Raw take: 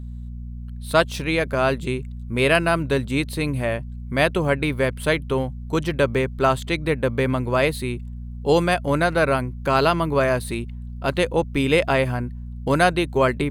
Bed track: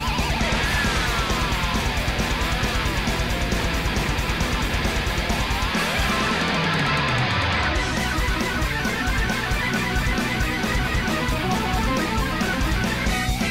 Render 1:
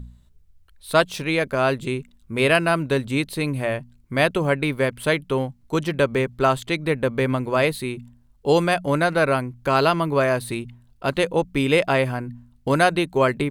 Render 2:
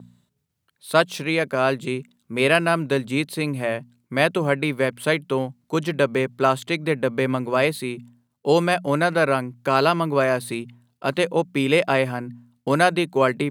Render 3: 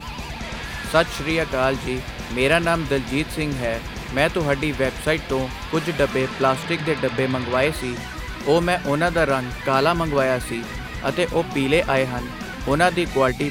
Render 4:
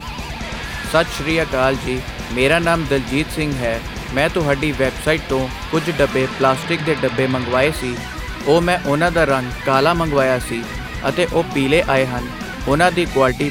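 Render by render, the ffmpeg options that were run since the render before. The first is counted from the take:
-af "bandreject=f=60:t=h:w=4,bandreject=f=120:t=h:w=4,bandreject=f=180:t=h:w=4,bandreject=f=240:t=h:w=4"
-af "agate=range=-33dB:threshold=-51dB:ratio=3:detection=peak,highpass=f=130:w=0.5412,highpass=f=130:w=1.3066"
-filter_complex "[1:a]volume=-9dB[a];[0:a][a]amix=inputs=2:normalize=0"
-af "volume=4dB,alimiter=limit=-1dB:level=0:latency=1"

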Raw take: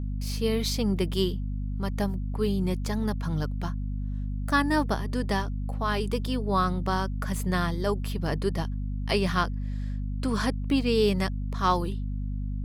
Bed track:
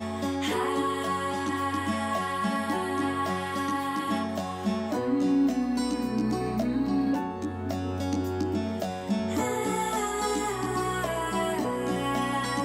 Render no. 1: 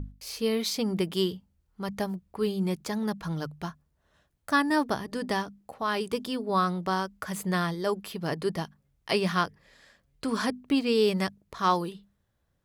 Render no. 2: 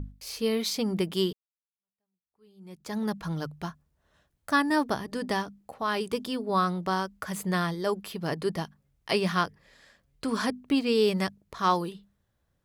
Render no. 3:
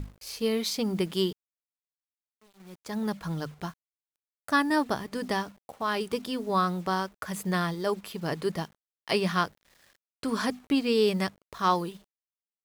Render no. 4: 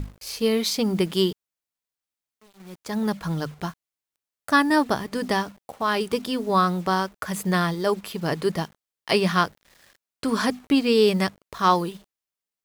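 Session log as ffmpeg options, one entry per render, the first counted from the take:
-af "bandreject=f=50:t=h:w=6,bandreject=f=100:t=h:w=6,bandreject=f=150:t=h:w=6,bandreject=f=200:t=h:w=6,bandreject=f=250:t=h:w=6"
-filter_complex "[0:a]asplit=2[a][b];[a]atrim=end=1.33,asetpts=PTS-STARTPTS,afade=t=out:st=1.326:d=0.004:c=hsin[c];[b]atrim=start=1.33,asetpts=PTS-STARTPTS,afade=t=in:d=1.64:c=exp[d];[c][d]concat=n=2:v=0:a=1"
-af "acrusher=bits=8:mix=0:aa=0.000001,aeval=exprs='sgn(val(0))*max(abs(val(0))-0.00168,0)':c=same"
-af "volume=5.5dB"

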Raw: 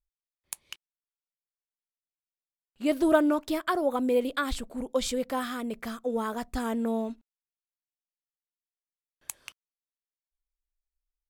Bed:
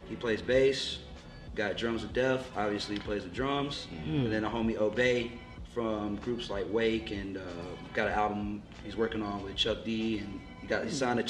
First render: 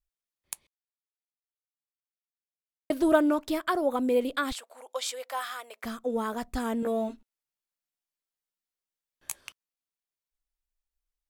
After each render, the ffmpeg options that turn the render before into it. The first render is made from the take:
-filter_complex "[0:a]asettb=1/sr,asplit=3[a][b][c];[a]atrim=end=4.524[d];[b]atrim=start=4.52:end=5.84,asetpts=PTS-STARTPTS,afade=t=in:d=0.004:c=qsin,afade=t=out:st=1.316:d=0.004:c=qsin,highpass=f=630:w=0.5412,highpass=f=630:w=1.3066[e];[c]atrim=start=5.836[f];[d][e]acrossfade=d=0.004:c1=hsin:c2=qsin[g];[g][f]acrossfade=d=0.004:c1=qsin:c2=hsin,asettb=1/sr,asplit=3[h][i][j];[h]atrim=end=6.814[k];[i]atrim=start=6.81:end=9.41,asetpts=PTS-STARTPTS,afade=t=in:d=0.004:c=qsin,afade=t=out:st=2.596:d=0.004:c=qsin,asplit=2[l][m];[m]adelay=15,volume=-2dB[n];[l][n]amix=inputs=2:normalize=0,atrim=end_sample=114660[o];[j]atrim=start=9.406[p];[k][o]acrossfade=d=0.004:c1=hsin:c2=qsin[q];[q][p]acrossfade=d=0.004:c1=qsin:c2=hsin,asplit=3[r][s][t];[r]atrim=end=0.67,asetpts=PTS-STARTPTS,afade=t=out:st=0.666:d=0.004:c=hsin[u];[s]atrim=start=0.67:end=2.9,asetpts=PTS-STARTPTS,volume=0[v];[t]atrim=start=2.9,asetpts=PTS-STARTPTS,afade=t=in:d=0.004:c=hsin[w];[u][v][w]concat=n=3:v=0:a=1"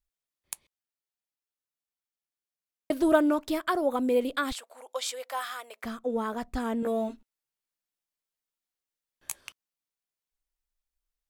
-filter_complex "[0:a]asettb=1/sr,asplit=3[a][b][c];[a]atrim=end=5.844[d];[b]atrim=start=5.84:end=6.84,asetpts=PTS-STARTPTS,afade=t=in:d=0.004:c=qsin,afade=t=out:st=0.996:d=0.004:c=qsin,highshelf=f=4.9k:g=-7[e];[c]atrim=start=6.836[f];[d][e]acrossfade=d=0.004:c1=hsin:c2=qsin[g];[g][f]acrossfade=d=0.004:c1=qsin:c2=hsin"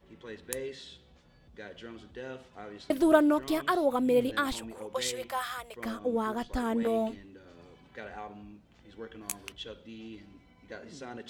-filter_complex "[1:a]volume=-13dB[a];[0:a][a]amix=inputs=2:normalize=0"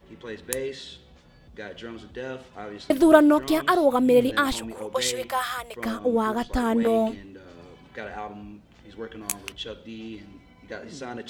-af "volume=7dB"

